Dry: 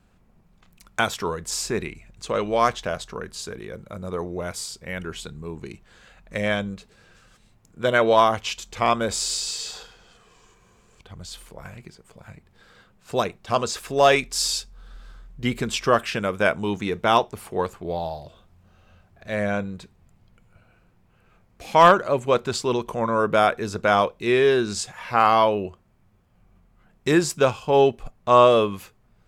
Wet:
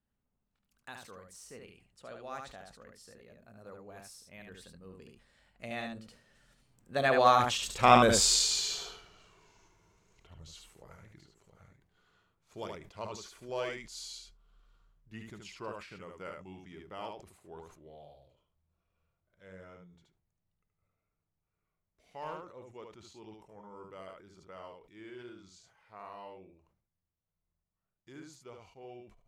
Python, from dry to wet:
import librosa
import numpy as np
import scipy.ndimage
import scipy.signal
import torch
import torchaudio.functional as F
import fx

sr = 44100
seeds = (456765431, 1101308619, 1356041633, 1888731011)

p1 = fx.doppler_pass(x, sr, speed_mps=39, closest_m=17.0, pass_at_s=8.12)
p2 = p1 + fx.echo_single(p1, sr, ms=74, db=-4.5, dry=0)
y = fx.sustainer(p2, sr, db_per_s=84.0)